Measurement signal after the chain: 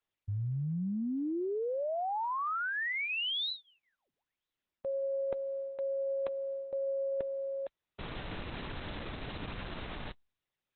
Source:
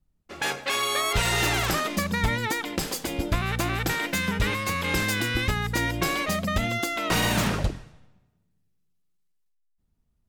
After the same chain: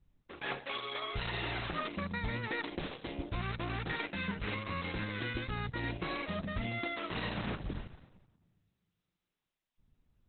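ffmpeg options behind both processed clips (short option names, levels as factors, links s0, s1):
-af "areverse,acompressor=threshold=0.0178:ratio=8,areverse,volume=1.33" -ar 48000 -c:a libopus -b:a 8k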